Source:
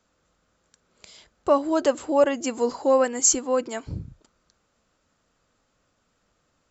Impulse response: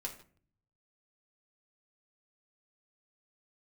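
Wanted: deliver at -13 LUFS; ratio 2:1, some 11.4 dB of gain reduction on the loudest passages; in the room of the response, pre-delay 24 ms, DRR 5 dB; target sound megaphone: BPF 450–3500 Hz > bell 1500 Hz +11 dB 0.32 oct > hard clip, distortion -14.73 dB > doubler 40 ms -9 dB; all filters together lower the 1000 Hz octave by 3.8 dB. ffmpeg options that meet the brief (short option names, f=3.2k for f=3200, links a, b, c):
-filter_complex "[0:a]equalizer=f=1k:t=o:g=-6,acompressor=threshold=-37dB:ratio=2,asplit=2[a][b];[1:a]atrim=start_sample=2205,adelay=24[c];[b][c]afir=irnorm=-1:irlink=0,volume=-4dB[d];[a][d]amix=inputs=2:normalize=0,highpass=450,lowpass=3.5k,equalizer=f=1.5k:t=o:w=0.32:g=11,asoftclip=type=hard:threshold=-28dB,asplit=2[e][f];[f]adelay=40,volume=-9dB[g];[e][g]amix=inputs=2:normalize=0,volume=23.5dB"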